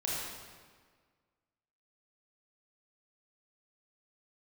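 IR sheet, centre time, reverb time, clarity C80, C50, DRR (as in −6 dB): 110 ms, 1.7 s, 0.0 dB, −2.5 dB, −6.0 dB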